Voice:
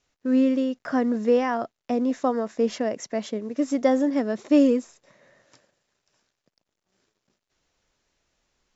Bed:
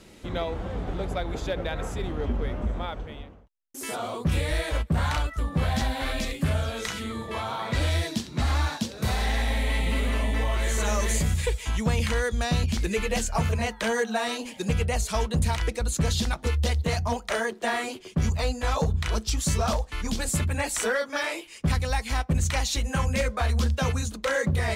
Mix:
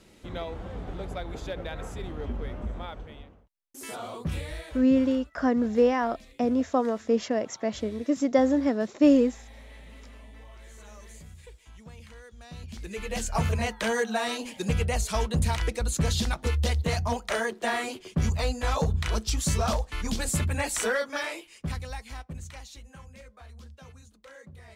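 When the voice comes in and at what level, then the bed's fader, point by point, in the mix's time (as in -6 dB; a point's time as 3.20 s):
4.50 s, -1.0 dB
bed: 4.24 s -5.5 dB
5.21 s -22.5 dB
12.36 s -22.5 dB
13.35 s -1 dB
21.00 s -1 dB
23.13 s -23.5 dB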